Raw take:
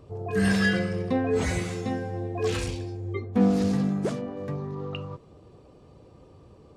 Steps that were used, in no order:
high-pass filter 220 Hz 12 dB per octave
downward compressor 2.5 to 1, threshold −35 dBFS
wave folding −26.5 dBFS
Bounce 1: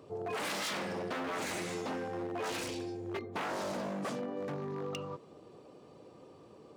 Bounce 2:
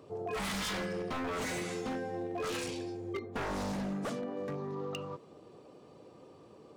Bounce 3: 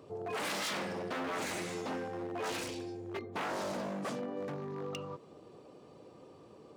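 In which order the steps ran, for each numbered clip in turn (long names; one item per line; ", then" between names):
wave folding, then high-pass filter, then downward compressor
high-pass filter, then wave folding, then downward compressor
wave folding, then downward compressor, then high-pass filter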